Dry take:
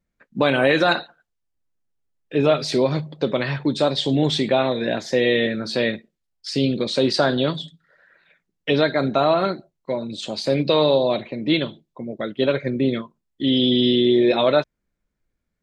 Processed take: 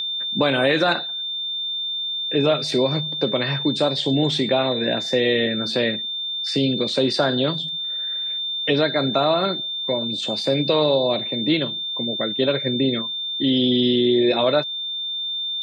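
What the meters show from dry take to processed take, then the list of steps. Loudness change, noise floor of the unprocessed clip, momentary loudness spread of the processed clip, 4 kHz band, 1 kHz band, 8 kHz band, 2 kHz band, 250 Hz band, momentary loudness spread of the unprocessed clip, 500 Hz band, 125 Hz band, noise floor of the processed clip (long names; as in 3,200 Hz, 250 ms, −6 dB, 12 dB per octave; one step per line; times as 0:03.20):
0.0 dB, −78 dBFS, 6 LU, +6.5 dB, −1.5 dB, −1.0 dB, −1.0 dB, −0.5 dB, 12 LU, −1.0 dB, −1.0 dB, −28 dBFS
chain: steady tone 3,600 Hz −26 dBFS
multiband upward and downward compressor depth 40%
level −1 dB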